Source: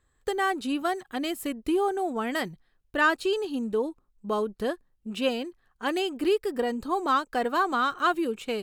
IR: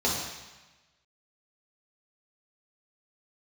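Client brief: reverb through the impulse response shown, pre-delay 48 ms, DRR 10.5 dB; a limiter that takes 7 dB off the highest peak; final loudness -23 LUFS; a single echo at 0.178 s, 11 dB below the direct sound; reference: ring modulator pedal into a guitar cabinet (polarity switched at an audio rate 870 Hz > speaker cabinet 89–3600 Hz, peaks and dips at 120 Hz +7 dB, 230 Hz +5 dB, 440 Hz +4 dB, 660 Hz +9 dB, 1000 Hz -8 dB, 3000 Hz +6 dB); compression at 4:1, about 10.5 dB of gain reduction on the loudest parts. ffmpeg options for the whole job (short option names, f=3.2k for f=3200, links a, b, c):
-filter_complex "[0:a]acompressor=threshold=-32dB:ratio=4,alimiter=level_in=3dB:limit=-24dB:level=0:latency=1,volume=-3dB,aecho=1:1:178:0.282,asplit=2[a][b];[1:a]atrim=start_sample=2205,adelay=48[c];[b][c]afir=irnorm=-1:irlink=0,volume=-22.5dB[d];[a][d]amix=inputs=2:normalize=0,aeval=exprs='val(0)*sgn(sin(2*PI*870*n/s))':c=same,highpass=89,equalizer=f=120:t=q:w=4:g=7,equalizer=f=230:t=q:w=4:g=5,equalizer=f=440:t=q:w=4:g=4,equalizer=f=660:t=q:w=4:g=9,equalizer=f=1k:t=q:w=4:g=-8,equalizer=f=3k:t=q:w=4:g=6,lowpass=f=3.6k:w=0.5412,lowpass=f=3.6k:w=1.3066,volume=10dB"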